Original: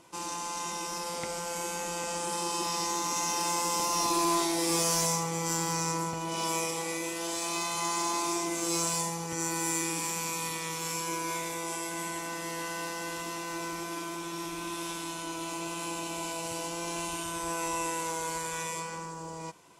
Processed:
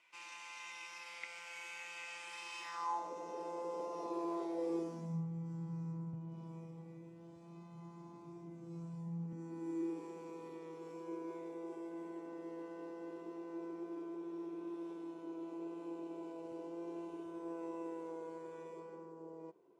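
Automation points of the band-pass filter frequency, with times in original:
band-pass filter, Q 3.9
2.60 s 2.3 kHz
3.14 s 470 Hz
4.66 s 470 Hz
5.26 s 140 Hz
9.00 s 140 Hz
9.98 s 390 Hz

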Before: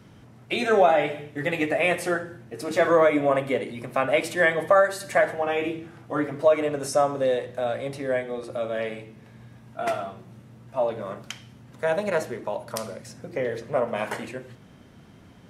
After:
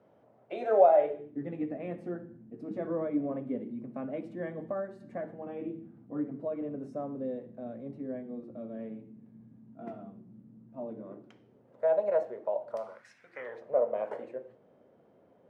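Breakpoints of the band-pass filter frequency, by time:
band-pass filter, Q 3
1.00 s 600 Hz
1.43 s 230 Hz
10.85 s 230 Hz
11.86 s 600 Hz
12.77 s 600 Hz
13.18 s 2.4 kHz
13.75 s 530 Hz

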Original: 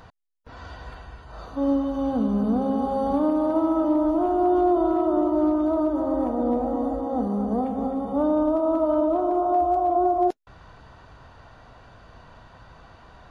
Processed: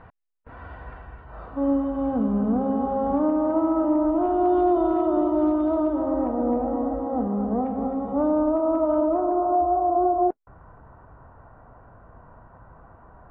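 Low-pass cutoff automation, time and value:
low-pass 24 dB/octave
4.04 s 2.3 kHz
4.48 s 3.6 kHz
5.78 s 3.6 kHz
6.27 s 2.4 kHz
9.05 s 2.4 kHz
9.57 s 1.4 kHz

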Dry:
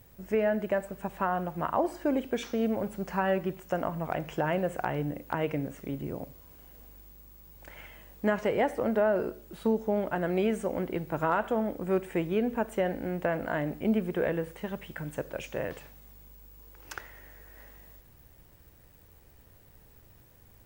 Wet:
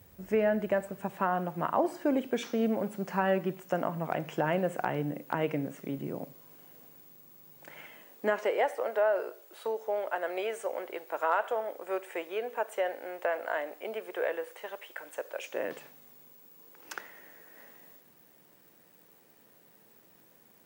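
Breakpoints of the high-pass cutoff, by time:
high-pass 24 dB/octave
0.71 s 60 Hz
1.30 s 140 Hz
7.72 s 140 Hz
8.69 s 470 Hz
15.38 s 470 Hz
15.78 s 180 Hz

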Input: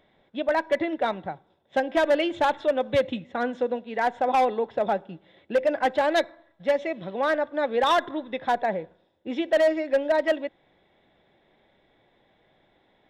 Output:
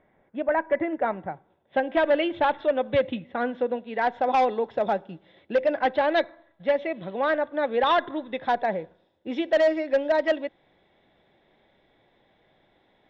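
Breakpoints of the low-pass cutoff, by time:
low-pass 24 dB/octave
1.07 s 2.2 kHz
1.95 s 3.5 kHz
3.71 s 3.5 kHz
4.54 s 6.9 kHz
5.09 s 6.9 kHz
6.07 s 3.9 kHz
8.10 s 3.9 kHz
8.79 s 6.3 kHz

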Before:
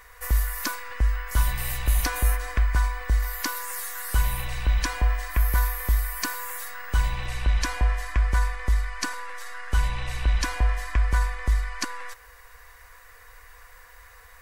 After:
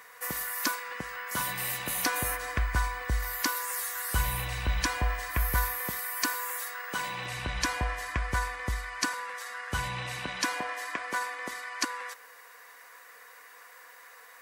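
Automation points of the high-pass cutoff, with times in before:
high-pass 24 dB/octave
1.97 s 150 Hz
2.53 s 65 Hz
5.61 s 65 Hz
6.02 s 200 Hz
7.06 s 200 Hz
7.58 s 74 Hz
9.60 s 74 Hz
10.74 s 240 Hz

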